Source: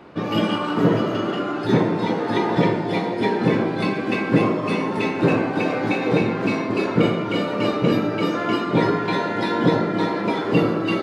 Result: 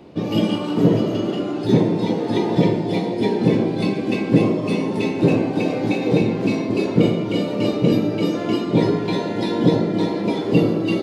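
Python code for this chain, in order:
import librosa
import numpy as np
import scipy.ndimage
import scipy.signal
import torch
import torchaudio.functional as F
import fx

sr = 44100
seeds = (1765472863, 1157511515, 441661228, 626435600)

y = fx.peak_eq(x, sr, hz=1400.0, db=-15.0, octaves=1.4)
y = y * 10.0 ** (3.5 / 20.0)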